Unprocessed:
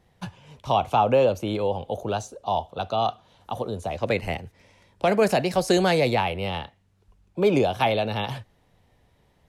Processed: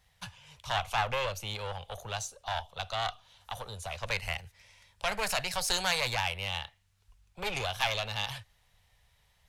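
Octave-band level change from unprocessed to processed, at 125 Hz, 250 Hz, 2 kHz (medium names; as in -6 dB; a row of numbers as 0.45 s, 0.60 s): -10.5 dB, -22.0 dB, -2.0 dB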